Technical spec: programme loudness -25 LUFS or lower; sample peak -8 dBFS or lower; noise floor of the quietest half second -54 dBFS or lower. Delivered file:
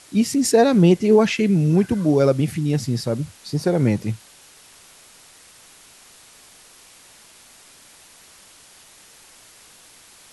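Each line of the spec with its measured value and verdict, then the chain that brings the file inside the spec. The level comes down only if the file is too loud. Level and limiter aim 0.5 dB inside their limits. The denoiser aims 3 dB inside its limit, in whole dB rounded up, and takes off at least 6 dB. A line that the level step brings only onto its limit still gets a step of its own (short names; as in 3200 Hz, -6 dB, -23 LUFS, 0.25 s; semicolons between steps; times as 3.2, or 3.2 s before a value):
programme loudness -18.5 LUFS: fail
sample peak -5.0 dBFS: fail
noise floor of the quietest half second -49 dBFS: fail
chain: gain -7 dB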